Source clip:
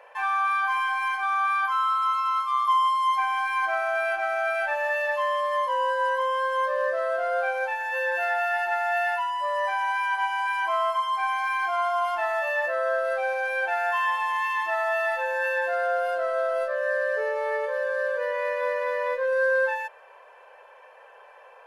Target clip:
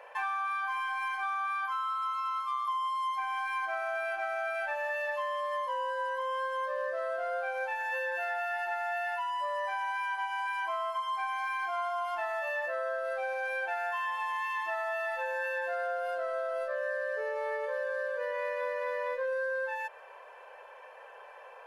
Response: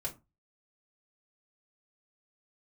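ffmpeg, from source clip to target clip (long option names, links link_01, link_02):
-af "acompressor=threshold=-31dB:ratio=6"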